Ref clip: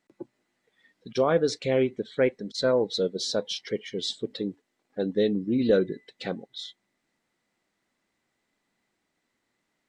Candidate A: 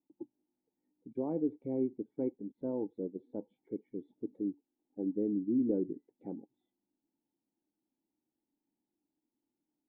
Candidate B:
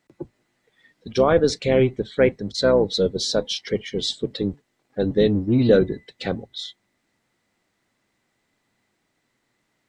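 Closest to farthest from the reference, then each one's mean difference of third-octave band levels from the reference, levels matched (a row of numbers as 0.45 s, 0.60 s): B, A; 1.5 dB, 7.0 dB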